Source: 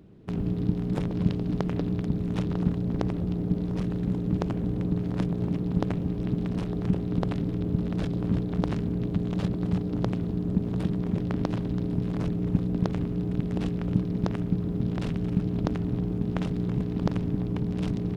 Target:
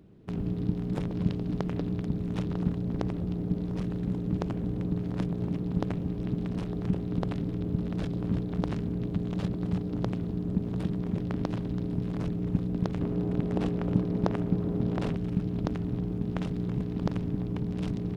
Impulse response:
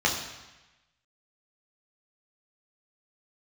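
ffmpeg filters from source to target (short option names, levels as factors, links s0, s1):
-filter_complex "[0:a]asettb=1/sr,asplit=3[s0][s1][s2];[s0]atrim=end=13.014[s3];[s1]atrim=start=13.01:end=15.16,asetpts=PTS-STARTPTS,afade=t=in:d=0.004:c=qsin,afade=t=out:st=2.146:d=0.004:c=qsin,equalizer=f=670:t=o:w=2.6:g=7.5[s4];[s2]atrim=start=15.156[s5];[s3][s4]acrossfade=d=0.004:c1=hsin:c2=qsin[s6];[s6][s5]acrossfade=d=0.004:c1=qsin:c2=hsin,volume=0.708"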